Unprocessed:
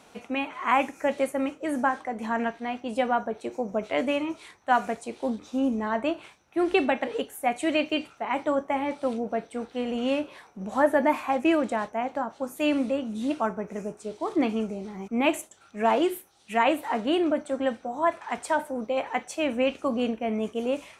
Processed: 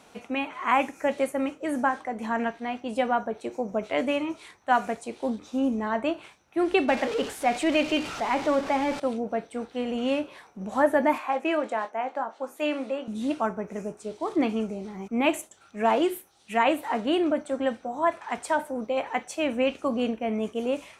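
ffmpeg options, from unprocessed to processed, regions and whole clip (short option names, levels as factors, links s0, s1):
-filter_complex "[0:a]asettb=1/sr,asplit=3[s0][s1][s2];[s0]atrim=end=6.884[s3];[s1]atrim=start=6.88:end=9,asetpts=PTS-STARTPTS,afade=t=in:d=0.004:c=qsin,afade=t=out:st=2.116:d=0.004:c=qsin,aeval=exprs='val(0)+0.5*0.0316*sgn(val(0))':c=same,lowpass=7000[s4];[s2]atrim=start=8.996[s5];[s3][s4]acrossfade=d=0.004:c1=hsin:c2=qsin[s6];[s6][s5]acrossfade=d=0.004:c1=qsin:c2=hsin,asettb=1/sr,asplit=3[s7][s8][s9];[s7]atrim=end=11.184[s10];[s8]atrim=start=11.18:end=13.08,asetpts=PTS-STARTPTS,afade=t=in:d=0.004:c=qsin,afade=t=out:st=1.896:d=0.004:c=qsin,highpass=410,aemphasis=mode=reproduction:type=cd,asplit=2[s11][s12];[s12]adelay=23,volume=0.299[s13];[s11][s13]amix=inputs=2:normalize=0,atrim=end_sample=83790[s14];[s9]atrim=start=13.076[s15];[s10][s14]acrossfade=d=0.004:c1=hsin:c2=qsin[s16];[s16][s15]acrossfade=d=0.004:c1=qsin:c2=hsin"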